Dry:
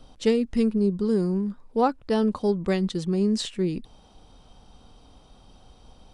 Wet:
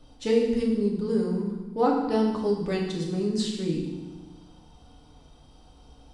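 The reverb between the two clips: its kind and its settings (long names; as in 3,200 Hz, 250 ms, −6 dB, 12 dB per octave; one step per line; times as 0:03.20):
feedback delay network reverb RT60 1.1 s, low-frequency decay 1.6×, high-frequency decay 0.95×, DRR −2 dB
level −5.5 dB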